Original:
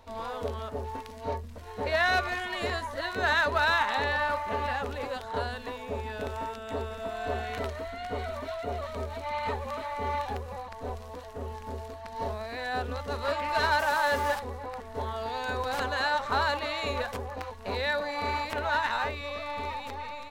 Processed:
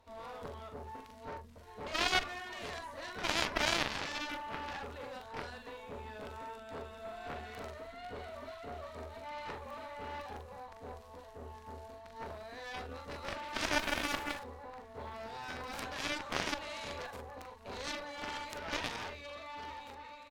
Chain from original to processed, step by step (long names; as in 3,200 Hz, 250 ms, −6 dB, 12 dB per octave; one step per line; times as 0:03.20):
double-tracking delay 42 ms −5 dB
harmonic generator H 3 −9 dB, 4 −20 dB, 7 −28 dB, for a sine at −11 dBFS
0:14.23–0:15.16: linearly interpolated sample-rate reduction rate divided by 2×
level −1 dB